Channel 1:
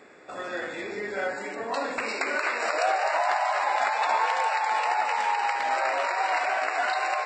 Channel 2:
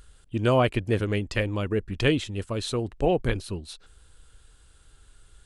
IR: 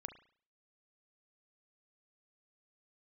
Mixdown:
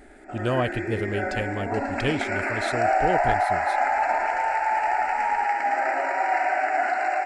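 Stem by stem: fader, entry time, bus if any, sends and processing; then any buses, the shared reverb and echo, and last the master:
+2.0 dB, 0.00 s, no send, echo send -4 dB, tilt EQ -2.5 dB/octave; static phaser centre 730 Hz, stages 8
-3.5 dB, 0.00 s, no send, no echo send, none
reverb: none
echo: feedback delay 111 ms, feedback 57%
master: none

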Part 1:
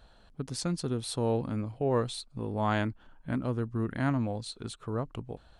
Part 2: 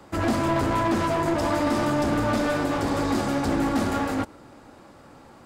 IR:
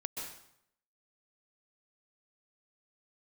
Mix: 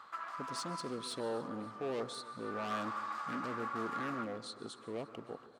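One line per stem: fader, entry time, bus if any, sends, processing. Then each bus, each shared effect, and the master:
-2.0 dB, 0.00 s, send -12 dB, echo send -19.5 dB, hard clipper -31.5 dBFS, distortion -6 dB; step-sequenced notch 2.5 Hz 790–2600 Hz
0.65 s -8.5 dB -> 1.02 s -17.5 dB -> 2.35 s -17.5 dB -> 2.67 s -5 dB, 0.00 s, send -16.5 dB, no echo send, resonant high-pass 1.2 kHz, resonance Q 6.4; compression 1.5:1, threshold -31 dBFS, peak gain reduction 7 dB; auto duck -12 dB, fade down 0.25 s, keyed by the first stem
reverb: on, RT60 0.70 s, pre-delay 118 ms
echo: feedback delay 283 ms, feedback 58%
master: high-pass 300 Hz 12 dB/octave; treble shelf 6.6 kHz -11 dB

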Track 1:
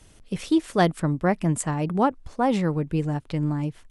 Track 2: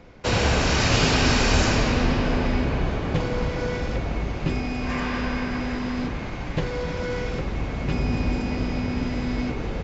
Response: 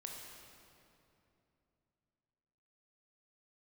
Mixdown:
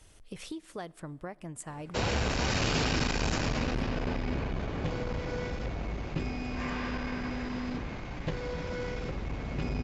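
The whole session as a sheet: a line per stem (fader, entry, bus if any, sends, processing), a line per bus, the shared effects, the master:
-4.0 dB, 0.00 s, send -17.5 dB, peaking EQ 200 Hz -6.5 dB 1.3 oct; compression 6:1, threshold -35 dBFS, peak gain reduction 17.5 dB
-7.0 dB, 1.70 s, no send, none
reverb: on, RT60 2.9 s, pre-delay 18 ms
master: transformer saturation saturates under 240 Hz

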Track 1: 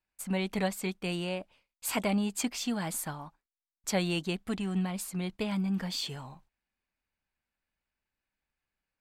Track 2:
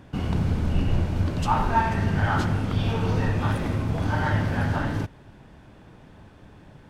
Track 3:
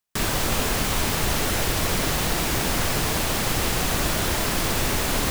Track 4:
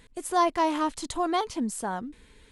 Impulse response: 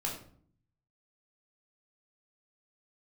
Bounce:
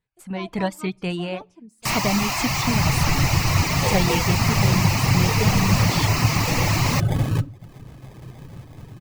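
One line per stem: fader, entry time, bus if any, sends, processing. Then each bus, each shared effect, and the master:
-2.0 dB, 0.00 s, send -20.5 dB, low-pass 4 kHz 6 dB/octave
-18.0 dB, 2.35 s, send -8 dB, level rider gain up to 13 dB; peak limiter -7 dBFS, peak gain reduction 5.5 dB; sample-rate reducer 1.4 kHz, jitter 0%
-10.5 dB, 1.70 s, no send, static phaser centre 2.3 kHz, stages 8; overdrive pedal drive 25 dB, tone 5 kHz, clips at -12 dBFS
-18.0 dB, 0.00 s, send -16.5 dB, treble shelf 6.9 kHz -6 dB; comb of notches 270 Hz; upward expansion 1.5:1, over -41 dBFS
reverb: on, RT60 0.55 s, pre-delay 11 ms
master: reverb removal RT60 0.58 s; peaking EQ 130 Hz +13 dB 0.42 oct; level rider gain up to 8 dB

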